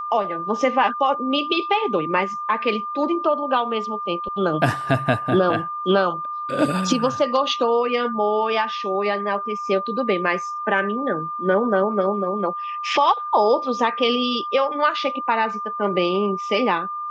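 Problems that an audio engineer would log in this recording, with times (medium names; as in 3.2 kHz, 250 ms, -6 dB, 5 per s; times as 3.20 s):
whine 1.2 kHz -26 dBFS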